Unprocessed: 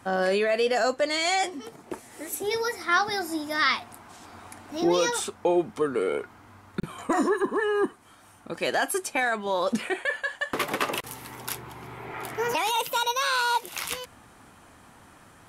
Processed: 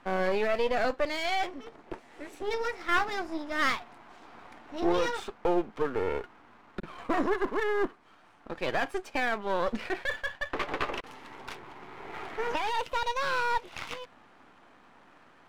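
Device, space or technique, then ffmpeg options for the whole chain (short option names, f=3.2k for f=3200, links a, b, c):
crystal radio: -filter_complex "[0:a]highpass=230,lowpass=3k,aeval=exprs='if(lt(val(0),0),0.251*val(0),val(0))':c=same,asettb=1/sr,asplit=3[a][b][c];[a]atrim=end=10.264[d];[b]atrim=start=10.26:end=11.03,asetpts=PTS-STARTPTS,afade=t=in:d=0.004:c=qsin,afade=t=out:st=0.766:d=0.004:c=qsin,highshelf=f=5.6k:g=-5.5[e];[c]atrim=start=11.026[f];[d][e]acrossfade=d=0.004:c1=hsin:c2=qsin[g];[g][f]acrossfade=d=0.004:c1=qsin:c2=hsin"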